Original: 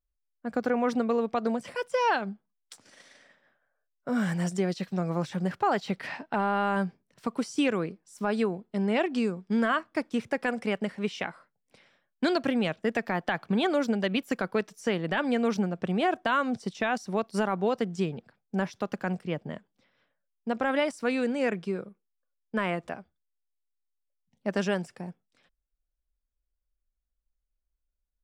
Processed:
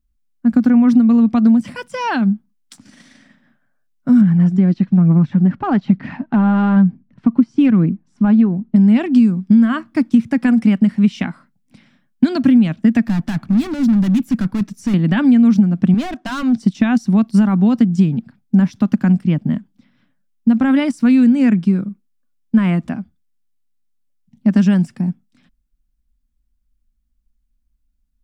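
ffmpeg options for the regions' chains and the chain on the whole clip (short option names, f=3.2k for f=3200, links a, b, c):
-filter_complex "[0:a]asettb=1/sr,asplit=3[a][b][c];[a]atrim=end=4.214[d];[b]atrim=start=4.21:end=8.76,asetpts=PTS-STARTPTS,afade=t=in:d=0.004:c=qsin,afade=t=out:st=4.546:d=0.004:c=qsin,aphaser=in_gain=1:out_gain=1:delay=3.8:decay=0.32:speed=1.1:type=triangular,adynamicsmooth=sensitivity=0.5:basefreq=2.2k[e];[c]atrim=start=8.756[f];[d][e]acrossfade=d=0.004:c1=hsin:c2=qsin[g];[g][f]acrossfade=d=0.004:c1=qsin:c2=hsin,asettb=1/sr,asplit=3[h][i][j];[h]atrim=end=13.064[k];[i]atrim=start=13.06:end=14.94,asetpts=PTS-STARTPTS,afade=t=in:d=0.004:c=qsin,afade=t=out:st=1.876:d=0.004:c=qsin,lowshelf=f=120:g=10,volume=32.5dB,asoftclip=hard,volume=-32.5dB,bandreject=f=3.1k:w=27[l];[j]atrim=start=14.936[m];[k][l]acrossfade=d=0.004:c1=hsin:c2=qsin[n];[n][m]acrossfade=d=0.004:c1=qsin:c2=hsin,asettb=1/sr,asplit=3[o][p][q];[o]atrim=end=15.944[r];[p]atrim=start=15.94:end=16.58,asetpts=PTS-STARTPTS,afade=t=in:d=0.004:c=qsin,afade=t=out:st=0.636:d=0.004:c=qsin,lowpass=5.7k,bass=f=250:g=-12,treble=f=4k:g=4,volume=28.5dB,asoftclip=hard,volume=-28.5dB[s];[q]atrim=start=16.576[t];[r][s]acrossfade=d=0.004:c1=hsin:c2=qsin[u];[u][t]acrossfade=d=0.004:c1=qsin:c2=hsin,lowshelf=f=330:t=q:w=3:g=10.5,acompressor=threshold=-14dB:ratio=6,volume=6dB"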